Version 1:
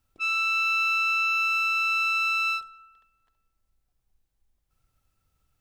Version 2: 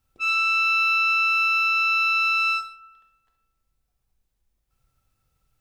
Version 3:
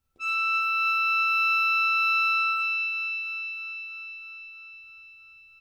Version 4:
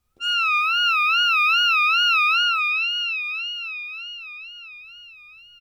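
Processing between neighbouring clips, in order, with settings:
gated-style reverb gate 190 ms falling, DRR 3.5 dB
doubling 12 ms -5.5 dB; on a send: echo whose repeats swap between lows and highs 161 ms, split 1.4 kHz, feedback 84%, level -9 dB; on the sum: trim -6.5 dB
wow and flutter 140 cents; trim +5 dB

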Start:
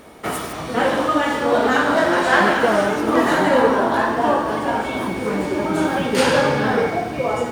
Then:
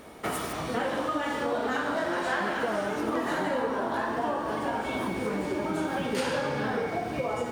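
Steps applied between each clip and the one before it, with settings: compression 4:1, threshold -23 dBFS, peak gain reduction 11 dB; trim -4 dB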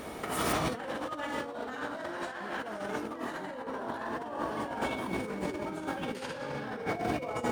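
compressor with a negative ratio -34 dBFS, ratio -0.5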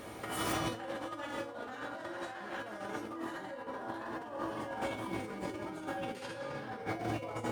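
feedback comb 110 Hz, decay 0.29 s, harmonics odd, mix 80%; trim +5.5 dB

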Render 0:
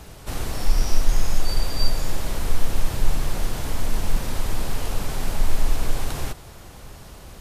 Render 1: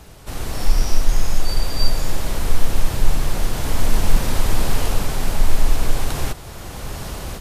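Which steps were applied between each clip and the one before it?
level rider gain up to 14 dB; trim -1 dB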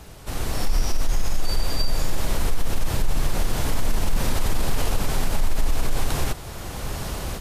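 peak limiter -11.5 dBFS, peak gain reduction 9.5 dB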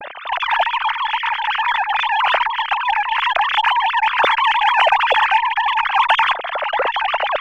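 formants replaced by sine waves; Chebyshev shaper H 8 -37 dB, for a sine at -2 dBFS

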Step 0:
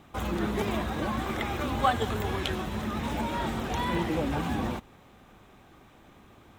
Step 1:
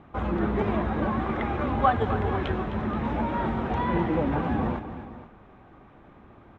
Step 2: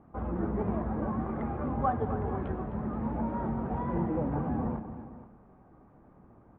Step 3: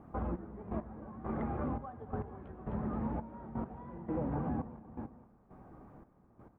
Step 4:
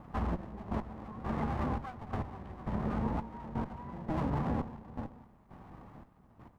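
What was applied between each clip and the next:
low-pass 1.7 kHz 12 dB/octave; on a send: multi-tap echo 259/477 ms -12.5/-15.5 dB; on the sum: trim +3.5 dB
low-pass 1.1 kHz 12 dB/octave; on a send at -17.5 dB: peaking EQ 150 Hz +11.5 dB 1.5 oct + reverberation RT60 1.1 s, pre-delay 4 ms; on the sum: trim -6 dB
compression 2.5:1, threshold -38 dBFS, peak gain reduction 10 dB; trance gate "xxxx....x.....xx" 169 bpm -12 dB; trim +3 dB
comb filter that takes the minimum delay 1 ms; trim +4 dB

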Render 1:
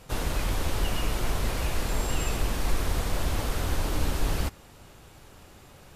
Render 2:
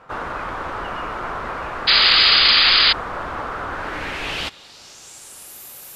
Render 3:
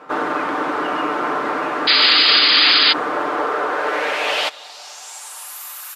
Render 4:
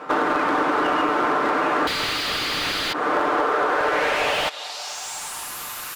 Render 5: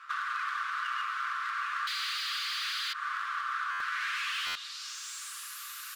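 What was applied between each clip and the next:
low-pass sweep 1.3 kHz -> 13 kHz, 3.70–5.60 s; painted sound noise, 1.87–2.93 s, 1.1–5 kHz -24 dBFS; RIAA curve recording; trim +5 dB
high-pass sweep 290 Hz -> 1.2 kHz, 2.88–5.94 s; peak limiter -9 dBFS, peak gain reduction 7 dB; comb 6.7 ms, depth 46%; trim +4.5 dB
compression 6:1, threshold -22 dBFS, peak gain reduction 11.5 dB; slew-rate limiter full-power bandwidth 110 Hz; trim +5 dB
rippled Chebyshev high-pass 1.1 kHz, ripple 3 dB; buffer glitch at 3.71/4.46 s, samples 512, times 7; trim -7.5 dB

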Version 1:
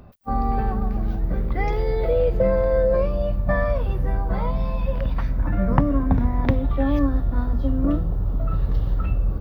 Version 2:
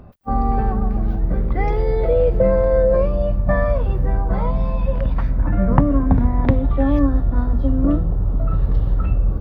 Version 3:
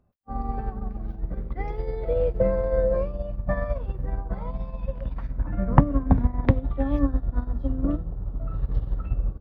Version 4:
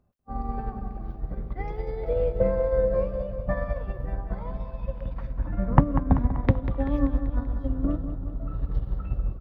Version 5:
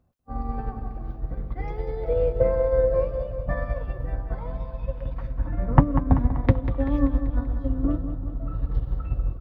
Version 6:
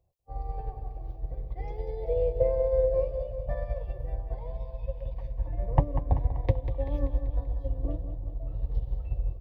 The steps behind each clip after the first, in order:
treble shelf 2.4 kHz -9 dB; trim +4 dB
upward expansion 2.5:1, over -26 dBFS
feedback delay 193 ms, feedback 59%, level -10.5 dB; trim -1.5 dB
comb of notches 200 Hz; trim +2.5 dB
static phaser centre 570 Hz, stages 4; trim -3.5 dB

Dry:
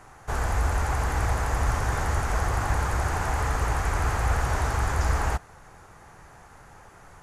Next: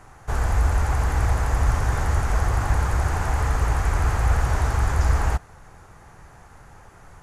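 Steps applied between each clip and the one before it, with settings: bass shelf 170 Hz +6 dB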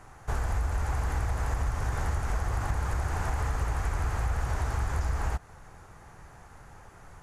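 compression, threshold -22 dBFS, peak gain reduction 8.5 dB; trim -3 dB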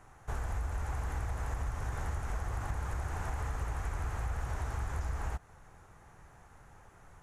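peaking EQ 4.7 kHz -5 dB 0.24 oct; trim -6.5 dB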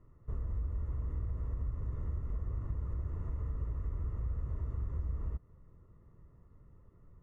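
boxcar filter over 56 samples

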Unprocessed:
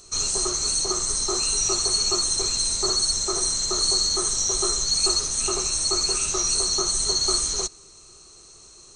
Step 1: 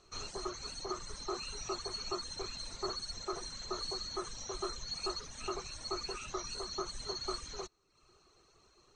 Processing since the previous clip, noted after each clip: reverb removal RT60 0.73 s; low-pass 2.5 kHz 12 dB/octave; bass shelf 500 Hz -5 dB; trim -6 dB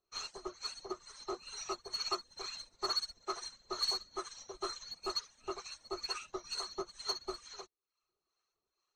overdrive pedal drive 11 dB, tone 7.8 kHz, clips at -22.5 dBFS; harmonic tremolo 2.2 Hz, depth 70%, crossover 700 Hz; upward expansion 2.5:1, over -52 dBFS; trim +4.5 dB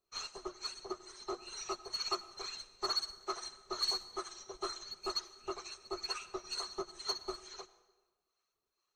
reverberation RT60 1.2 s, pre-delay 83 ms, DRR 16 dB

